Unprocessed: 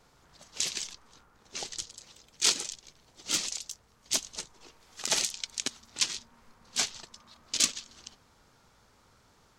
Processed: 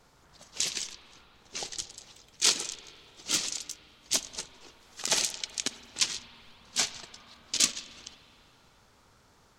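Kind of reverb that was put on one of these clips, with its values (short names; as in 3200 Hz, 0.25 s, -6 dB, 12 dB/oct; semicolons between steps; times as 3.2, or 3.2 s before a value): spring tank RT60 2.6 s, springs 47/56 ms, chirp 25 ms, DRR 13 dB; gain +1 dB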